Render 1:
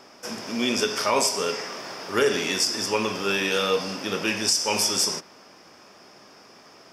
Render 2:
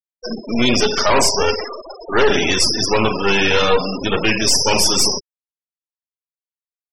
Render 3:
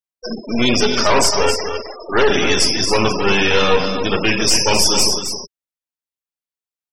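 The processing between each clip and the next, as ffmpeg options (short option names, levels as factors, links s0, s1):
-filter_complex "[0:a]aeval=exprs='0.355*(cos(1*acos(clip(val(0)/0.355,-1,1)))-cos(1*PI/2))+0.112*(cos(5*acos(clip(val(0)/0.355,-1,1)))-cos(5*PI/2))+0.112*(cos(8*acos(clip(val(0)/0.355,-1,1)))-cos(8*PI/2))':c=same,asplit=4[s0][s1][s2][s3];[s1]adelay=245,afreqshift=-71,volume=0.0668[s4];[s2]adelay=490,afreqshift=-142,volume=0.0275[s5];[s3]adelay=735,afreqshift=-213,volume=0.0112[s6];[s0][s4][s5][s6]amix=inputs=4:normalize=0,afftfilt=real='re*gte(hypot(re,im),0.126)':imag='im*gte(hypot(re,im),0.126)':win_size=1024:overlap=0.75,volume=1.26"
-af "aecho=1:1:266:0.376"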